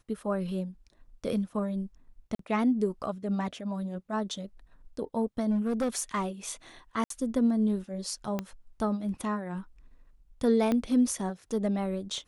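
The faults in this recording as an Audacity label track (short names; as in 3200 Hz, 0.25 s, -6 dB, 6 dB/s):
2.350000	2.390000	gap 43 ms
5.500000	6.270000	clipped -24 dBFS
7.040000	7.100000	gap 63 ms
8.390000	8.390000	pop -18 dBFS
10.720000	10.720000	pop -16 dBFS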